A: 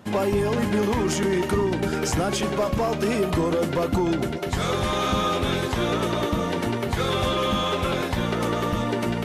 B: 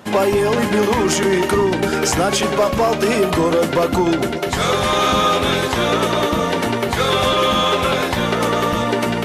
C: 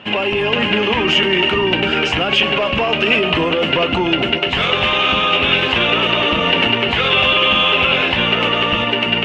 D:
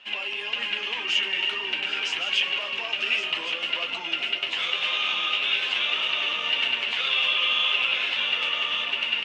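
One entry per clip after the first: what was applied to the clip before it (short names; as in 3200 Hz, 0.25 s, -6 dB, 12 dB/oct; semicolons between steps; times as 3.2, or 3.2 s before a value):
low shelf 200 Hz -8.5 dB; notches 50/100/150/200/250/300/350 Hz; gain +9 dB
limiter -12 dBFS, peak gain reduction 6.5 dB; synth low-pass 2800 Hz, resonance Q 10; AGC; gain -1 dB
band-pass 6600 Hz, Q 0.64; flange 1.8 Hz, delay 7 ms, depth 6 ms, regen -53%; echo 1.115 s -8.5 dB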